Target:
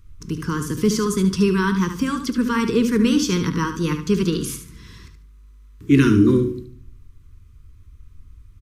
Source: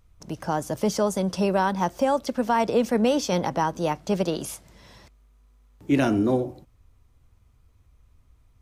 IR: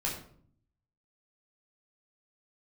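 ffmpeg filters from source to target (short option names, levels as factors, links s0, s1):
-filter_complex "[0:a]asuperstop=centerf=680:order=8:qfactor=1.1,lowshelf=f=160:g=8.5,bandreject=f=60:t=h:w=6,bandreject=f=120:t=h:w=6,bandreject=f=180:t=h:w=6,aecho=1:1:73|146|219:0.355|0.0887|0.0222,asplit=2[s0][s1];[1:a]atrim=start_sample=2205[s2];[s1][s2]afir=irnorm=-1:irlink=0,volume=0.141[s3];[s0][s3]amix=inputs=2:normalize=0,volume=1.58"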